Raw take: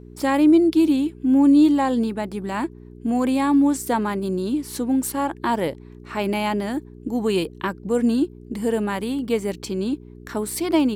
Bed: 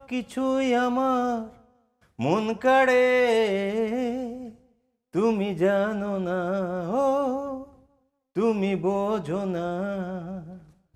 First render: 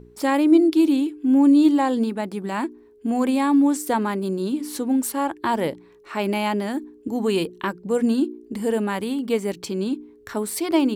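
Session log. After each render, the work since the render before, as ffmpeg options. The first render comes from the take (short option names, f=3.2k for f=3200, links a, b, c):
-af "bandreject=f=60:t=h:w=4,bandreject=f=120:t=h:w=4,bandreject=f=180:t=h:w=4,bandreject=f=240:t=h:w=4,bandreject=f=300:t=h:w=4,bandreject=f=360:t=h:w=4"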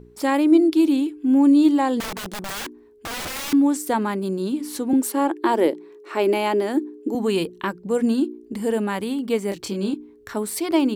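-filter_complex "[0:a]asettb=1/sr,asplit=3[a][b][c];[a]atrim=end=2.004[d];[b]atrim=start=2:end=3.53,asetpts=PTS-STARTPTS,afade=t=in:d=0.004:c=qsin,afade=t=out:st=1.526:d=0.004:c=qsin,aeval=exprs='(mod(18.8*val(0)+1,2)-1)/18.8':c=same[e];[c]atrim=start=3.526[f];[d][e]acrossfade=d=0.004:c1=hsin:c2=qsin[g];[g][f]acrossfade=d=0.004:c1=qsin:c2=hsin,asettb=1/sr,asplit=3[h][i][j];[h]atrim=end=4.934[k];[i]atrim=start=4.93:end=7.15,asetpts=PTS-STARTPTS,afade=t=in:d=0.004:c=qsin,afade=t=out:st=2.216:d=0.004:c=qsin,highpass=f=340:t=q:w=3.2[l];[j]atrim=start=7.146[m];[k][l]acrossfade=d=0.004:c1=hsin:c2=qsin[n];[n][m]acrossfade=d=0.004:c1=qsin:c2=hsin,asettb=1/sr,asplit=3[o][p][q];[o]atrim=end=9.494[r];[p]atrim=start=9.49:end=9.94,asetpts=PTS-STARTPTS,afade=t=in:d=0.004:c=qsin,afade=t=out:st=0.446:d=0.004:c=qsin,asplit=2[s][t];[t]adelay=25,volume=-4dB[u];[s][u]amix=inputs=2:normalize=0,atrim=end_sample=19845[v];[q]atrim=start=9.936[w];[r][v]acrossfade=d=0.004:c1=hsin:c2=qsin[x];[x][w]acrossfade=d=0.004:c1=qsin:c2=hsin"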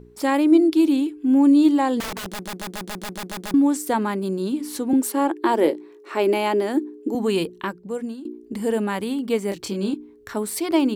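-filter_complex "[0:a]asettb=1/sr,asplit=3[a][b][c];[a]atrim=end=5.614[d];[b]atrim=start=5.61:end=6.14,asetpts=PTS-STARTPTS,afade=t=in:d=0.004:c=qsin,afade=t=out:st=0.526:d=0.004:c=qsin,asplit=2[e][f];[f]adelay=20,volume=-9dB[g];[e][g]amix=inputs=2:normalize=0,atrim=end_sample=23373[h];[c]atrim=start=6.136[i];[d][h]acrossfade=d=0.004:c1=hsin:c2=qsin[j];[j][i]acrossfade=d=0.004:c1=qsin:c2=hsin,asplit=11[k][l][m][n][o][p][q][r][s][t][u];[k]atrim=end=2.422[v];[l]atrim=start=2.278:end=2.422[w];[m]atrim=start=2.278:end=2.422[x];[n]atrim=start=2.278:end=2.422[y];[o]atrim=start=2.278:end=2.422[z];[p]atrim=start=2.278:end=2.422[aa];[q]atrim=start=2.278:end=2.422[ab];[r]atrim=start=2.278:end=2.422[ac];[s]atrim=start=2.278:end=2.422[ad];[t]atrim=start=3.538:end=8.25,asetpts=PTS-STARTPTS,afade=t=out:st=3.962:d=0.75:silence=0.0944061[ae];[u]atrim=start=8.25,asetpts=PTS-STARTPTS,afade=t=in:d=0.004:c=hsin:silence=0.0944061[af];[v][w]acrossfade=d=0.004:c1=hsin:c2=hsin[ag];[ag][x]acrossfade=d=0.004:c1=hsin:c2=hsin[ah];[ah][y]acrossfade=d=0.004:c1=hsin:c2=hsin[ai];[ai][z]acrossfade=d=0.004:c1=hsin:c2=hsin[aj];[aj][aa]acrossfade=d=0.004:c1=hsin:c2=hsin[ak];[ak][ab]acrossfade=d=0.004:c1=hsin:c2=hsin[al];[al][ac]acrossfade=d=0.004:c1=hsin:c2=hsin[am];[am][ad]acrossfade=d=0.004:c1=hsin:c2=hsin[an];[ae][af]concat=n=2:v=0:a=1[ao];[an][ao]acrossfade=d=0.004:c1=hsin:c2=hsin"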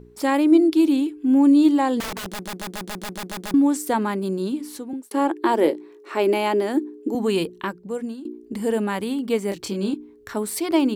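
-filter_complex "[0:a]asplit=2[a][b];[a]atrim=end=5.11,asetpts=PTS-STARTPTS,afade=t=out:st=4.43:d=0.68[c];[b]atrim=start=5.11,asetpts=PTS-STARTPTS,afade=t=in:d=0.004:c=hsin[d];[c][d]concat=n=2:v=0:a=1"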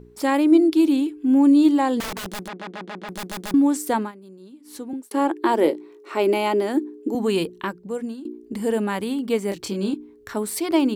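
-filter_complex "[0:a]asplit=3[a][b][c];[a]afade=t=out:st=2.47:d=0.02[d];[b]highpass=200,lowpass=2.7k,afade=t=in:st=2.47:d=0.02,afade=t=out:st=3.08:d=0.02[e];[c]afade=t=in:st=3.08:d=0.02[f];[d][e][f]amix=inputs=3:normalize=0,asettb=1/sr,asplit=3[g][h][i];[g]atrim=end=5.634[j];[h]atrim=start=5.63:end=6.69,asetpts=PTS-STARTPTS,afade=t=in:d=0.004:c=qsin,afade=t=out:st=1.056:d=0.004:c=qsin,bandreject=f=1.7k:w=12[k];[i]atrim=start=6.686[l];[j][k]acrossfade=d=0.004:c1=hsin:c2=qsin[m];[m][l]acrossfade=d=0.004:c1=qsin:c2=hsin,asplit=3[n][o][p];[n]atrim=end=4.12,asetpts=PTS-STARTPTS,afade=t=out:st=3.92:d=0.2:c=qsin:silence=0.112202[q];[o]atrim=start=4.12:end=4.64,asetpts=PTS-STARTPTS,volume=-19dB[r];[p]atrim=start=4.64,asetpts=PTS-STARTPTS,afade=t=in:d=0.2:c=qsin:silence=0.112202[s];[q][r][s]concat=n=3:v=0:a=1"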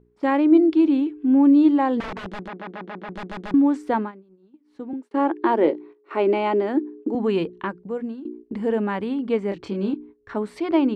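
-af "lowpass=2.3k,agate=range=-13dB:threshold=-41dB:ratio=16:detection=peak"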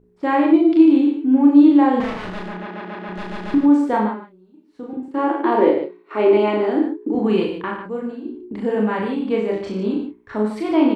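-filter_complex "[0:a]asplit=2[a][b];[b]adelay=28,volume=-6.5dB[c];[a][c]amix=inputs=2:normalize=0,asplit=2[d][e];[e]aecho=0:1:37.9|93.29|148.7:0.794|0.447|0.398[f];[d][f]amix=inputs=2:normalize=0"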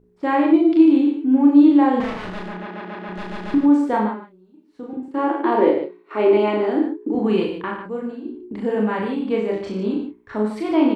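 -af "volume=-1dB"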